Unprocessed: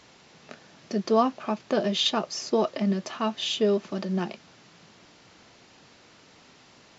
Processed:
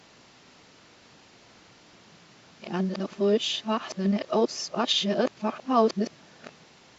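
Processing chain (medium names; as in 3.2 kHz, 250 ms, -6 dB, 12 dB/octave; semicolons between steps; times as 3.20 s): reverse the whole clip; Opus 96 kbps 48 kHz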